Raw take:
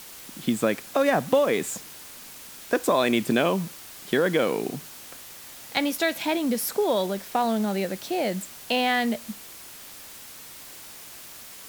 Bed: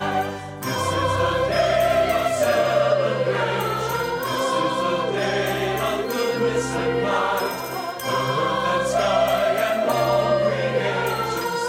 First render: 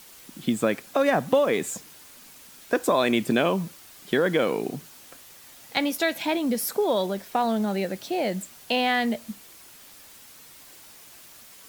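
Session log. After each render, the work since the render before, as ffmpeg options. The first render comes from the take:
-af "afftdn=nr=6:nf=-44"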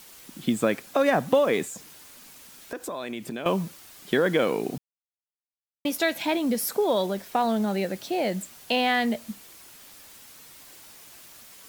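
-filter_complex "[0:a]asettb=1/sr,asplit=3[s0][s1][s2];[s0]atrim=end=1.644[s3];[s1]atrim=start=1.64:end=3.46,asetpts=PTS-STARTPTS,afade=t=in:d=0.004:c=qsin,afade=t=out:st=1.816:d=0.004:c=qsin,acompressor=threshold=0.0158:ratio=2.5:attack=3.2:release=140:knee=1:detection=peak[s4];[s2]atrim=start=3.456[s5];[s3][s4]acrossfade=d=0.004:c1=hsin:c2=qsin[s6];[s6][s5]acrossfade=d=0.004:c1=qsin:c2=hsin,asplit=3[s7][s8][s9];[s7]atrim=end=4.78,asetpts=PTS-STARTPTS,afade=t=out:st=4.776:d=0.004:c=hsin[s10];[s8]atrim=start=4.78:end=5.85,asetpts=PTS-STARTPTS,volume=0[s11];[s9]atrim=start=5.85,asetpts=PTS-STARTPTS,afade=t=in:d=0.004:c=hsin[s12];[s10][s11][s12]concat=n=3:v=0:a=1"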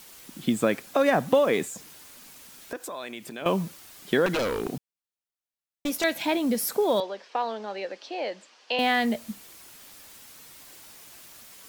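-filter_complex "[0:a]asettb=1/sr,asplit=3[s0][s1][s2];[s0]atrim=end=2.764[s3];[s1]atrim=start=2.76:end=3.42,asetpts=PTS-STARTPTS,afade=t=in:d=0.004:c=qsin,afade=t=out:st=0.656:d=0.004:c=qsin,lowshelf=f=410:g=-9.5[s4];[s2]atrim=start=3.416[s5];[s3][s4]acrossfade=d=0.004:c1=hsin:c2=qsin[s6];[s6][s5]acrossfade=d=0.004:c1=qsin:c2=hsin,asettb=1/sr,asplit=3[s7][s8][s9];[s7]atrim=end=4.264[s10];[s8]atrim=start=4.26:end=6.04,asetpts=PTS-STARTPTS,afade=t=in:d=0.004:c=qsin,afade=t=out:st=1.776:d=0.004:c=qsin,aeval=exprs='0.0891*(abs(mod(val(0)/0.0891+3,4)-2)-1)':c=same[s11];[s9]atrim=start=6.036[s12];[s10][s11]acrossfade=d=0.004:c1=hsin:c2=qsin[s13];[s13][s12]acrossfade=d=0.004:c1=qsin:c2=hsin,asettb=1/sr,asplit=3[s14][s15][s16];[s14]atrim=end=7.004[s17];[s15]atrim=start=7:end=8.79,asetpts=PTS-STARTPTS,afade=t=in:d=0.004:c=qsin,afade=t=out:st=1.786:d=0.004:c=qsin,highpass=f=360:w=0.5412,highpass=f=360:w=1.3066,equalizer=f=370:t=q:w=4:g=-7,equalizer=f=680:t=q:w=4:g=-6,equalizer=f=1400:t=q:w=4:g=-4,equalizer=f=2100:t=q:w=4:g=-4,equalizer=f=3700:t=q:w=4:g=-5,lowpass=f=5000:w=0.5412,lowpass=f=5000:w=1.3066[s18];[s16]atrim=start=8.786[s19];[s17][s18]acrossfade=d=0.004:c1=hsin:c2=qsin[s20];[s20][s19]acrossfade=d=0.004:c1=qsin:c2=hsin"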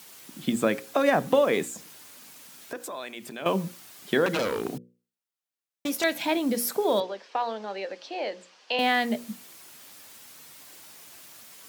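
-af "highpass=100,bandreject=f=60:t=h:w=6,bandreject=f=120:t=h:w=6,bandreject=f=180:t=h:w=6,bandreject=f=240:t=h:w=6,bandreject=f=300:t=h:w=6,bandreject=f=360:t=h:w=6,bandreject=f=420:t=h:w=6,bandreject=f=480:t=h:w=6,bandreject=f=540:t=h:w=6"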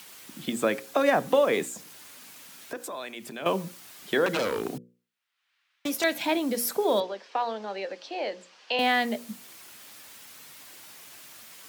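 -filter_complex "[0:a]acrossover=split=290|1200|3600[s0][s1][s2][s3];[s0]alimiter=level_in=2.24:limit=0.0631:level=0:latency=1:release=319,volume=0.447[s4];[s2]acompressor=mode=upward:threshold=0.00316:ratio=2.5[s5];[s4][s1][s5][s3]amix=inputs=4:normalize=0"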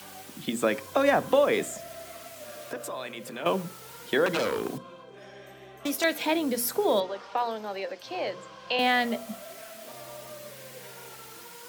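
-filter_complex "[1:a]volume=0.0562[s0];[0:a][s0]amix=inputs=2:normalize=0"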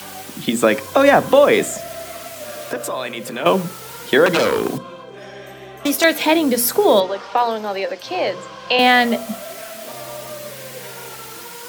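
-af "volume=3.55,alimiter=limit=0.891:level=0:latency=1"

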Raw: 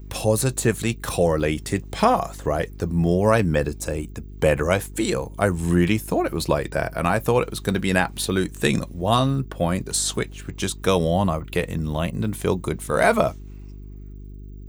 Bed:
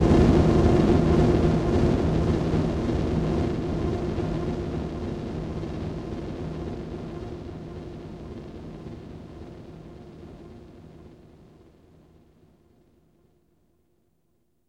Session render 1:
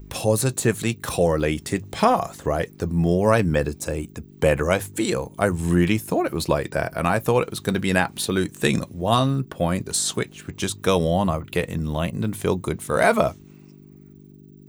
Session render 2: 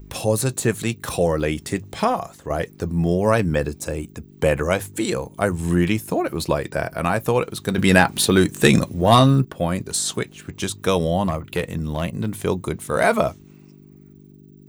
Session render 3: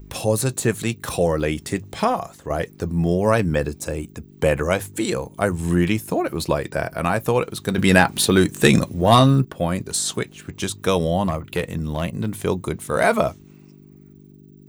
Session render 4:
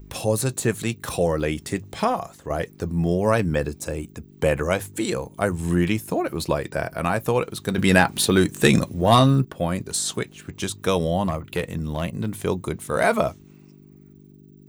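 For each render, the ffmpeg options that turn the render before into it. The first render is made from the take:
-af "bandreject=f=50:t=h:w=4,bandreject=f=100:t=h:w=4"
-filter_complex "[0:a]asettb=1/sr,asplit=3[s0][s1][s2];[s0]atrim=end=7.784[s3];[s1]atrim=start=7.78:end=9.45,asetpts=PTS-STARTPTS,afade=t=in:d=0.004:c=qsin,afade=t=out:st=1.666:d=0.004:c=qsin,acontrast=88[s4];[s2]atrim=start=9.446[s5];[s3][s4]acrossfade=d=0.004:c1=hsin:c2=qsin[s6];[s6][s5]acrossfade=d=0.004:c1=qsin:c2=hsin,asettb=1/sr,asplit=3[s7][s8][s9];[s7]atrim=end=11.244[s10];[s8]atrim=start=11.24:end=12.3,asetpts=PTS-STARTPTS,afade=t=in:d=0.004:c=qsin,afade=t=out:st=1.056:d=0.004:c=qsin,volume=5.31,asoftclip=hard,volume=0.188[s11];[s9]atrim=start=12.296[s12];[s10][s11]acrossfade=d=0.004:c1=hsin:c2=qsin[s13];[s13][s12]acrossfade=d=0.004:c1=qsin:c2=hsin,asplit=2[s14][s15];[s14]atrim=end=2.5,asetpts=PTS-STARTPTS,afade=t=out:st=1.76:d=0.74:silence=0.421697[s16];[s15]atrim=start=2.5,asetpts=PTS-STARTPTS,afade=t=in:d=0.004:c=hsin:silence=0.421697[s17];[s16][s17]concat=n=2:v=0:a=1"
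-af anull
-af "volume=0.794"

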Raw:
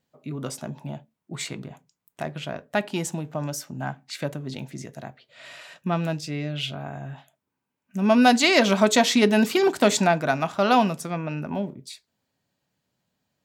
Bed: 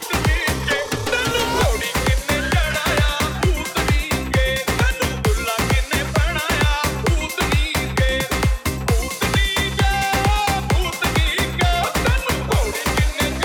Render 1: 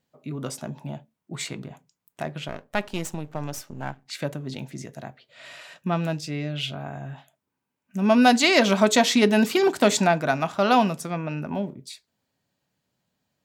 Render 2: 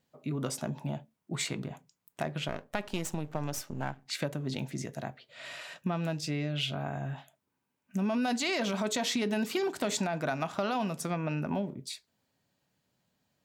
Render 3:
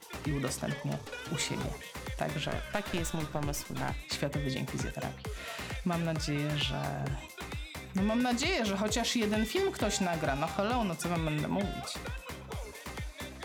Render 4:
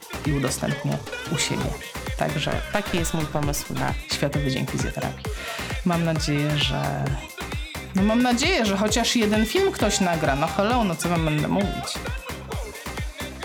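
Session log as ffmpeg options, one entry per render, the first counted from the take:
-filter_complex "[0:a]asettb=1/sr,asplit=3[s0][s1][s2];[s0]atrim=end=2.484[s3];[s1]atrim=start=2.48:end=4.06,asetpts=PTS-STARTPTS,afade=t=in:d=0.004:c=qsin,afade=t=out:st=1.576:d=0.004:c=qsin,aeval=exprs='if(lt(val(0),0),0.251*val(0),val(0))':c=same[s4];[s2]atrim=start=4.056[s5];[s3][s4]acrossfade=d=0.004:c1=hsin:c2=qsin[s6];[s6][s5]acrossfade=d=0.004:c1=qsin:c2=hsin"
-af "alimiter=limit=0.237:level=0:latency=1:release=11,acompressor=threshold=0.0398:ratio=6"
-filter_complex "[1:a]volume=0.0794[s0];[0:a][s0]amix=inputs=2:normalize=0"
-af "volume=2.99"

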